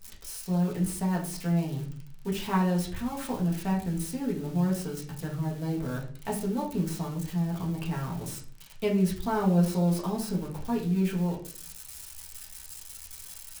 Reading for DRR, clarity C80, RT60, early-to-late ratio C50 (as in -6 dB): -4.0 dB, 14.0 dB, 0.45 s, 8.5 dB